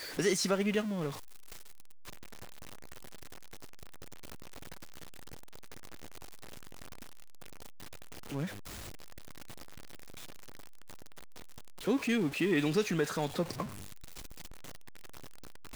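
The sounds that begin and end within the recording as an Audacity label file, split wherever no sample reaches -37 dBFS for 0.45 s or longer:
8.320000	8.470000	sound
11.870000	13.660000	sound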